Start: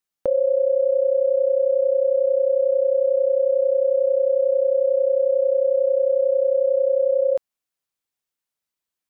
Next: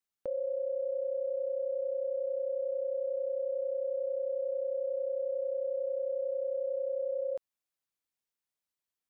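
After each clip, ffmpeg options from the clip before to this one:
ffmpeg -i in.wav -af "alimiter=limit=-22dB:level=0:latency=1:release=79,volume=-6dB" out.wav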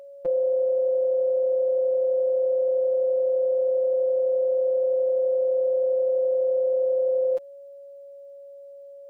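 ffmpeg -i in.wav -af "afftfilt=real='hypot(re,im)*cos(PI*b)':imag='0':win_size=1024:overlap=0.75,aeval=exprs='val(0)+0.00224*sin(2*PI*560*n/s)':channel_layout=same,acontrast=72,volume=5.5dB" out.wav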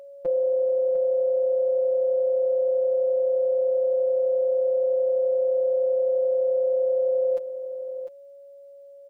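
ffmpeg -i in.wav -af "aecho=1:1:701:0.299" out.wav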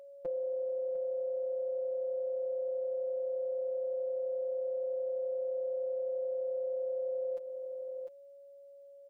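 ffmpeg -i in.wav -af "acompressor=threshold=-29dB:ratio=2,volume=-7.5dB" out.wav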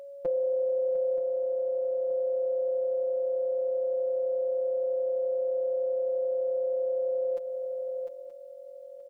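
ffmpeg -i in.wav -af "aecho=1:1:926|1852|2778|3704:0.2|0.0878|0.0386|0.017,volume=7.5dB" out.wav

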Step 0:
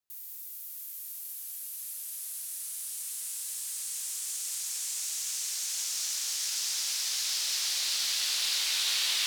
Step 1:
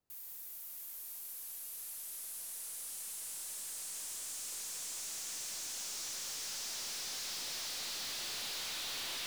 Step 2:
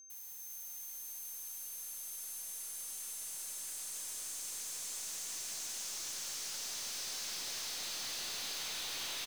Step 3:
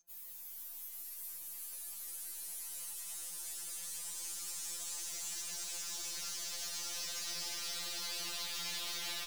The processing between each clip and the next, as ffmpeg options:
ffmpeg -i in.wav -af "tiltshelf=frequency=970:gain=9.5,aeval=exprs='(tanh(178*val(0)+0.1)-tanh(0.1))/178':channel_layout=same,volume=6dB" out.wav
ffmpeg -i in.wav -filter_complex "[0:a]aeval=exprs='val(0)+0.00251*sin(2*PI*6300*n/s)':channel_layout=same,asplit=2[link_01][link_02];[link_02]aecho=0:1:397:0.562[link_03];[link_01][link_03]amix=inputs=2:normalize=0,volume=-1.5dB" out.wav
ffmpeg -i in.wav -af "afftfilt=real='re*2.83*eq(mod(b,8),0)':imag='im*2.83*eq(mod(b,8),0)':win_size=2048:overlap=0.75,volume=2.5dB" out.wav

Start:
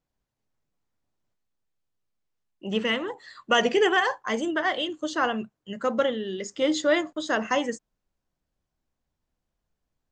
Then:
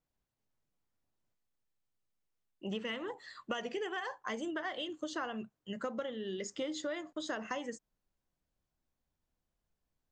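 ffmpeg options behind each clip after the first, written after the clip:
ffmpeg -i in.wav -af "acompressor=threshold=-30dB:ratio=12,volume=-4.5dB" out.wav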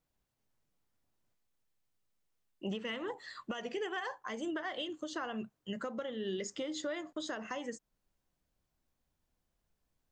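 ffmpeg -i in.wav -af "alimiter=level_in=8dB:limit=-24dB:level=0:latency=1:release=336,volume=-8dB,volume=3.5dB" out.wav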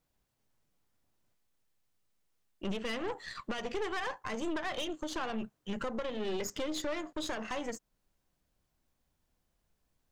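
ffmpeg -i in.wav -af "aeval=exprs='(tanh(89.1*val(0)+0.75)-tanh(0.75))/89.1':channel_layout=same,volume=8dB" out.wav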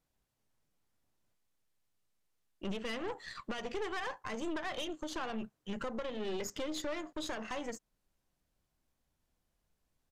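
ffmpeg -i in.wav -af "aresample=32000,aresample=44100,volume=-2.5dB" out.wav

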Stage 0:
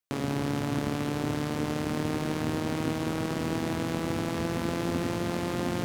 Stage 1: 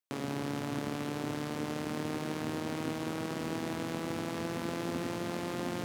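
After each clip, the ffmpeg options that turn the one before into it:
ffmpeg -i in.wav -af "highpass=100,lowshelf=frequency=180:gain=-4,volume=-4.5dB" out.wav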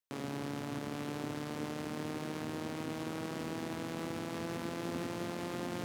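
ffmpeg -i in.wav -af "alimiter=level_in=1dB:limit=-24dB:level=0:latency=1,volume=-1dB,volume=-2dB" out.wav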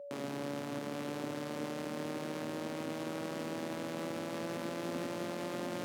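ffmpeg -i in.wav -af "aeval=exprs='val(0)+0.00631*sin(2*PI*570*n/s)':channel_layout=same,highpass=150" out.wav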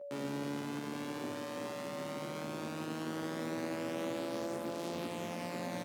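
ffmpeg -i in.wav -filter_complex "[0:a]asplit=2[link_01][link_02];[link_02]adelay=11.7,afreqshift=0.45[link_03];[link_01][link_03]amix=inputs=2:normalize=1,volume=3dB" out.wav

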